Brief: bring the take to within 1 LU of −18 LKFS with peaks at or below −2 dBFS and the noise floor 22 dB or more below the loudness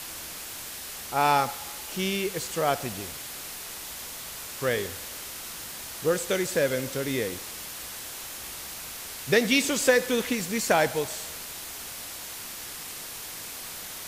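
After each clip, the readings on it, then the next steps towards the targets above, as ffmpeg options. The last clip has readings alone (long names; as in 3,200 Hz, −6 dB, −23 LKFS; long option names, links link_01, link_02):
background noise floor −39 dBFS; target noise floor −51 dBFS; integrated loudness −29.0 LKFS; sample peak −7.5 dBFS; target loudness −18.0 LKFS
→ -af "afftdn=noise_reduction=12:noise_floor=-39"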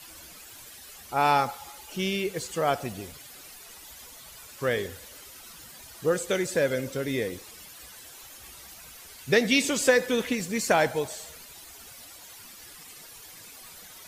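background noise floor −47 dBFS; target noise floor −49 dBFS
→ -af "afftdn=noise_reduction=6:noise_floor=-47"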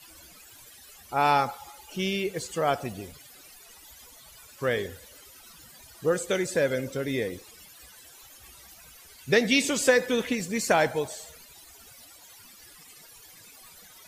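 background noise floor −51 dBFS; integrated loudness −26.5 LKFS; sample peak −8.0 dBFS; target loudness −18.0 LKFS
→ -af "volume=8.5dB,alimiter=limit=-2dB:level=0:latency=1"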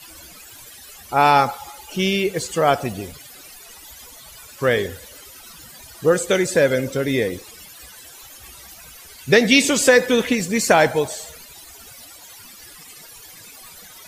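integrated loudness −18.5 LKFS; sample peak −2.0 dBFS; background noise floor −43 dBFS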